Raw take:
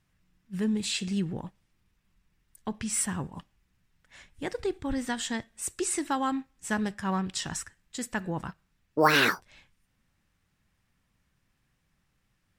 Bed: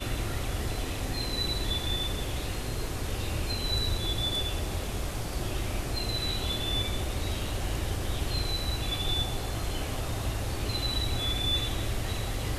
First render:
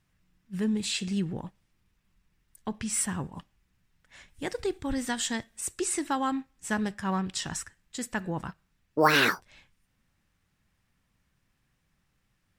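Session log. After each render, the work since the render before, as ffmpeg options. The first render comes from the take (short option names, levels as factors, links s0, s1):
-filter_complex "[0:a]asettb=1/sr,asplit=3[s0][s1][s2];[s0]atrim=end=4.284[s3];[s1]atrim=start=4.28:end=5.61,asetpts=PTS-STARTPTS,afade=t=in:d=0.004:c=qsin,afade=t=out:st=1.326:d=0.004:c=qsin,highshelf=f=4300:g=6[s4];[s2]atrim=start=5.606[s5];[s3][s4]acrossfade=d=0.004:c1=hsin:c2=qsin[s6];[s6][s5]acrossfade=d=0.004:c1=qsin:c2=hsin"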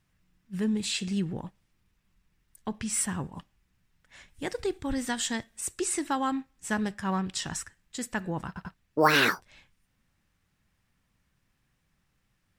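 -filter_complex "[0:a]asplit=4[s0][s1][s2][s3];[s0]atrim=end=8.562[s4];[s1]atrim=start=8.468:end=8.562[s5];[s2]atrim=start=8.468:end=8.562[s6];[s3]atrim=start=8.738[s7];[s4][s5]acrossfade=d=0.004:c1=hsin:c2=hsin[s8];[s8][s6]acrossfade=d=0.004:c1=hsin:c2=hsin[s9];[s9][s7]acrossfade=d=0.004:c1=hsin:c2=hsin"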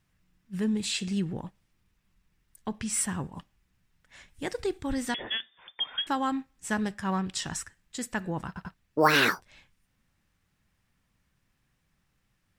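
-filter_complex "[0:a]asettb=1/sr,asplit=3[s0][s1][s2];[s0]atrim=end=5.144[s3];[s1]atrim=start=5.14:end=6.07,asetpts=PTS-STARTPTS,afade=t=in:d=0.004:c=qsin,afade=t=out:st=0.926:d=0.004:c=qsin,lowpass=f=3100:t=q:w=0.5098,lowpass=f=3100:t=q:w=0.6013,lowpass=f=3100:t=q:w=0.9,lowpass=f=3100:t=q:w=2.563,afreqshift=-3600[s4];[s2]atrim=start=6.066[s5];[s3][s4]acrossfade=d=0.004:c1=hsin:c2=qsin[s6];[s6][s5]acrossfade=d=0.004:c1=qsin:c2=hsin"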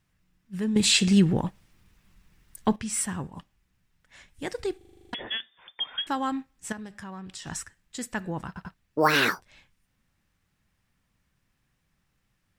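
-filter_complex "[0:a]asettb=1/sr,asplit=3[s0][s1][s2];[s0]atrim=end=6.724[s3];[s1]atrim=start=6.72:end=7.47,asetpts=PTS-STARTPTS,afade=t=in:d=0.004:c=qsin,afade=t=out:st=0.746:d=0.004:c=qsin,acompressor=threshold=0.0126:ratio=4:attack=3.2:release=140:knee=1:detection=peak[s4];[s2]atrim=start=7.466[s5];[s3][s4]acrossfade=d=0.004:c1=hsin:c2=qsin[s6];[s6][s5]acrossfade=d=0.004:c1=qsin:c2=hsin,asplit=12[s7][s8][s9][s10][s11][s12][s13][s14][s15][s16][s17][s18];[s7]atrim=end=0.762[s19];[s8]atrim=start=0.758:end=2.762,asetpts=PTS-STARTPTS,volume=3.35[s20];[s9]atrim=start=2.758:end=4.812[s21];[s10]atrim=start=4.768:end=4.812[s22];[s11]atrim=start=4.768:end=4.812[s23];[s12]atrim=start=4.768:end=4.812[s24];[s13]atrim=start=4.768:end=4.812[s25];[s14]atrim=start=4.768:end=4.812[s26];[s15]atrim=start=4.768:end=4.812[s27];[s16]atrim=start=4.768:end=4.812[s28];[s17]atrim=start=4.768:end=4.812[s29];[s18]atrim=start=5.128[s30];[s19][s20]acrossfade=d=0.004:c1=hsin:c2=hsin[s31];[s31][s21]acrossfade=d=0.004:c1=hsin:c2=hsin[s32];[s32][s22]acrossfade=d=0.004:c1=hsin:c2=hsin[s33];[s33][s23]acrossfade=d=0.004:c1=hsin:c2=hsin[s34];[s34][s24]acrossfade=d=0.004:c1=hsin:c2=hsin[s35];[s35][s25]acrossfade=d=0.004:c1=hsin:c2=hsin[s36];[s36][s26]acrossfade=d=0.004:c1=hsin:c2=hsin[s37];[s37][s27]acrossfade=d=0.004:c1=hsin:c2=hsin[s38];[s38][s28]acrossfade=d=0.004:c1=hsin:c2=hsin[s39];[s39][s29]acrossfade=d=0.004:c1=hsin:c2=hsin[s40];[s40][s30]acrossfade=d=0.004:c1=hsin:c2=hsin"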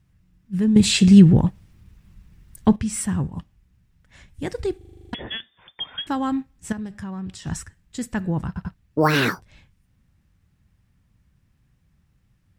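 -af "equalizer=f=76:w=0.32:g=15"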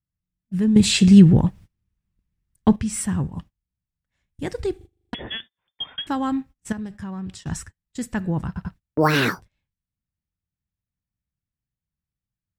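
-af "agate=range=0.0501:threshold=0.0112:ratio=16:detection=peak"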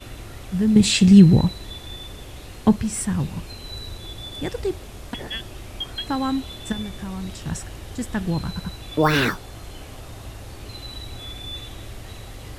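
-filter_complex "[1:a]volume=0.501[s0];[0:a][s0]amix=inputs=2:normalize=0"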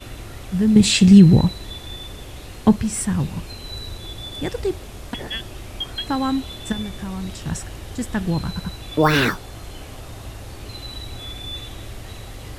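-af "volume=1.26,alimiter=limit=0.891:level=0:latency=1"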